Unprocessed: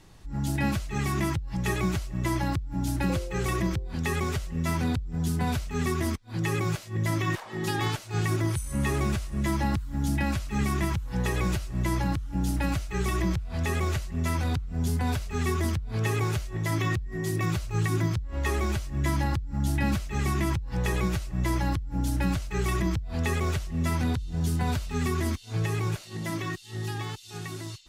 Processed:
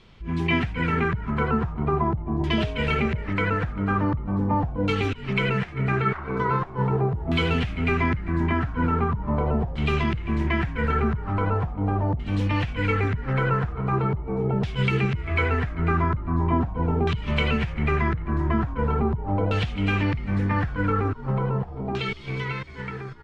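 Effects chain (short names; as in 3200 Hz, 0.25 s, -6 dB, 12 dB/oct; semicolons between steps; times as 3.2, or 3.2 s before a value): varispeed +20%; in parallel at -7 dB: crossover distortion -43 dBFS; on the sum: frequency-shifting echo 0.396 s, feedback 40%, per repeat -59 Hz, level -14 dB; LFO low-pass saw down 0.41 Hz 720–3400 Hz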